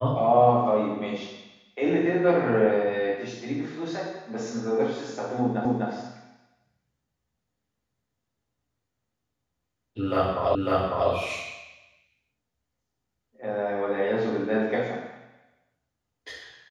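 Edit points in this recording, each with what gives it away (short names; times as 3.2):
5.65 repeat of the last 0.25 s
10.55 repeat of the last 0.55 s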